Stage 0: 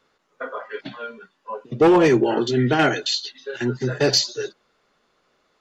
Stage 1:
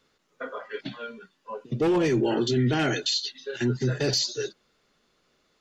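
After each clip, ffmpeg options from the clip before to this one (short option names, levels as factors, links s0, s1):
-af "equalizer=f=920:t=o:w=2.5:g=-8.5,alimiter=limit=0.119:level=0:latency=1:release=13,volume=1.26"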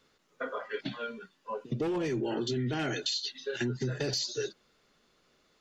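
-af "acompressor=threshold=0.0355:ratio=6"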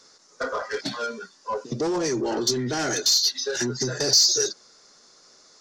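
-filter_complex "[0:a]aresample=22050,aresample=44100,asplit=2[s0][s1];[s1]highpass=f=720:p=1,volume=6.31,asoftclip=type=tanh:threshold=0.106[s2];[s0][s2]amix=inputs=2:normalize=0,lowpass=f=2200:p=1,volume=0.501,highshelf=f=4000:t=q:w=3:g=11.5,volume=1.5"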